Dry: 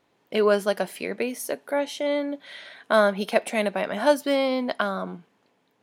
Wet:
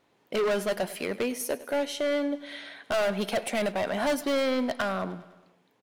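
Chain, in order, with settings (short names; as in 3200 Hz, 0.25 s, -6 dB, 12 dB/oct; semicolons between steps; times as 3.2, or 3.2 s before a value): hard clip -23 dBFS, distortion -6 dB; feedback echo 0.101 s, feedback 59%, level -17.5 dB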